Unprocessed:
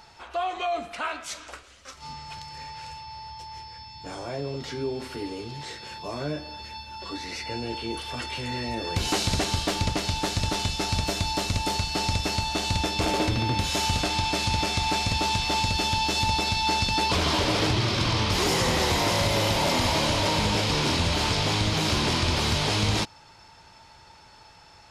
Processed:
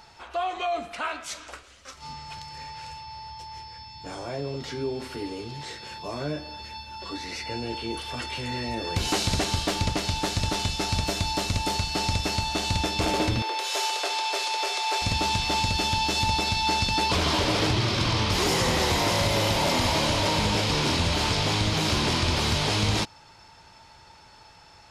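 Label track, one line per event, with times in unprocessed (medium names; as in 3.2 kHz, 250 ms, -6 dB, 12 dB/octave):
13.420000	15.020000	elliptic high-pass 390 Hz, stop band 50 dB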